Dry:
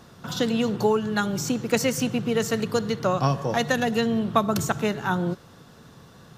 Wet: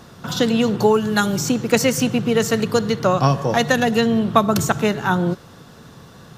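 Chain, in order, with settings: 0.93–1.35 s: treble shelf 11 kHz -> 5.6 kHz +12 dB; trim +6 dB

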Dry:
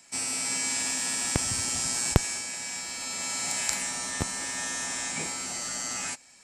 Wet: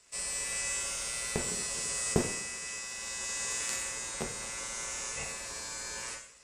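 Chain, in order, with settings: two-slope reverb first 0.56 s, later 1.7 s, DRR 0 dB; ring modulator 300 Hz; trim -5.5 dB

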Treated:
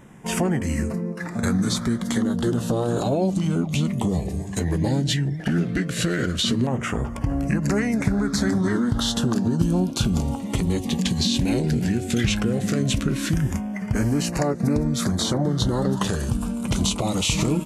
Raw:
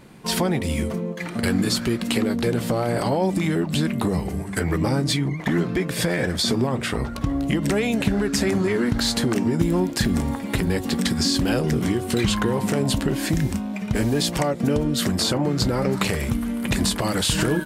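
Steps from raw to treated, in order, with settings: formant shift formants -3 st; LFO notch saw down 0.15 Hz 770–4400 Hz

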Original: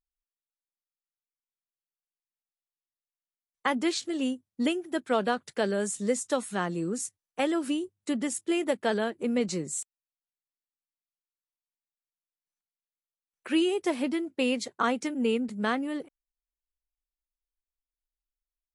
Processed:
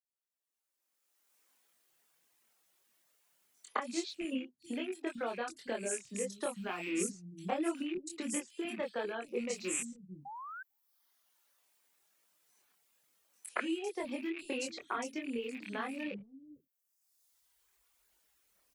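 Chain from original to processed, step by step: rattle on loud lows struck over -44 dBFS, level -25 dBFS; recorder AGC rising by 22 dB/s; high-pass 150 Hz 12 dB/octave; reverb removal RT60 2 s; compression 4:1, threshold -30 dBFS, peak gain reduction 15.5 dB; chorus voices 6, 1.1 Hz, delay 24 ms, depth 3 ms; painted sound rise, 10.14–10.52 s, 770–1600 Hz -45 dBFS; three bands offset in time highs, mids, lows 110/560 ms, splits 200/4400 Hz

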